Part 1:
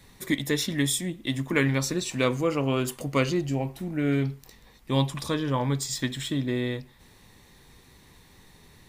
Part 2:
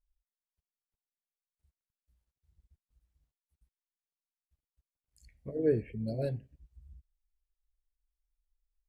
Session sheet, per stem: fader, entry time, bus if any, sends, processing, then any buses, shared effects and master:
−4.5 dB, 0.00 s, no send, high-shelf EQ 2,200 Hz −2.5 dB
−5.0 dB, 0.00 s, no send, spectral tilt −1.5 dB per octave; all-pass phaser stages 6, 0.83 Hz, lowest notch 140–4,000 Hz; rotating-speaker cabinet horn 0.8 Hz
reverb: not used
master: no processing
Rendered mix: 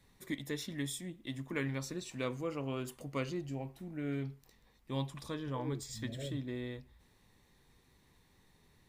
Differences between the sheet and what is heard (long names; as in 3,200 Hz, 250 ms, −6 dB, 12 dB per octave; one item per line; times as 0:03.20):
stem 1 −4.5 dB → −12.5 dB
stem 2 −5.0 dB → −11.5 dB